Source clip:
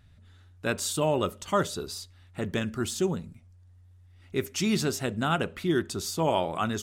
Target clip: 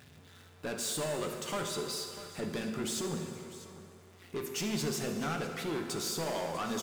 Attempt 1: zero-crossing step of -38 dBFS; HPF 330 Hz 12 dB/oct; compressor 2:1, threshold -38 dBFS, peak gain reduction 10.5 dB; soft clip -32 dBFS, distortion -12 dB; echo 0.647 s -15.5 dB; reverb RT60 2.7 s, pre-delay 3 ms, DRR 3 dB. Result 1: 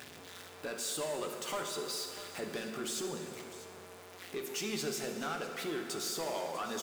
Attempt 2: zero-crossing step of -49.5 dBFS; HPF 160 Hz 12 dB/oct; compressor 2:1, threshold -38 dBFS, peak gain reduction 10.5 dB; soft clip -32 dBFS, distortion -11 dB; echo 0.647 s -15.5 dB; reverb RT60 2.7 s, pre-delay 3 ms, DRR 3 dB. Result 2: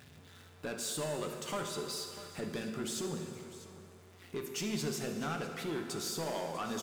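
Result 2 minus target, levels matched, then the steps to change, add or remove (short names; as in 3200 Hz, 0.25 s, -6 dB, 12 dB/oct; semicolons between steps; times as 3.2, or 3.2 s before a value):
compressor: peak gain reduction +5 dB
change: compressor 2:1, threshold -28.5 dBFS, peak gain reduction 5.5 dB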